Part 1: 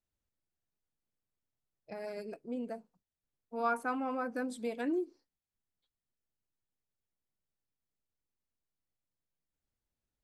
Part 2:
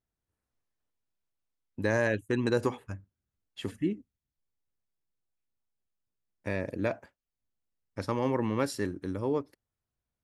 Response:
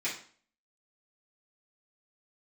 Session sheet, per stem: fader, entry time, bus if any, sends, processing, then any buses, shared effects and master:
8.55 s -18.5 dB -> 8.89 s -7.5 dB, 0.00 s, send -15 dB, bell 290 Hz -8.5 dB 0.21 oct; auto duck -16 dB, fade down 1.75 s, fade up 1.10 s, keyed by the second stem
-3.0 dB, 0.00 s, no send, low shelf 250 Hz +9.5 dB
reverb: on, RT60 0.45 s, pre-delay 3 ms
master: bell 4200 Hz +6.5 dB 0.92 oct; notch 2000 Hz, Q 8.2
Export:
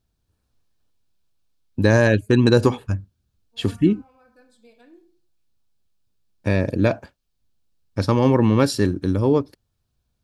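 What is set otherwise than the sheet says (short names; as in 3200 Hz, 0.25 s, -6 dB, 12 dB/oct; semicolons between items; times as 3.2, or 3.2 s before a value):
stem 1 -18.5 dB -> -10.0 dB; stem 2 -3.0 dB -> +8.5 dB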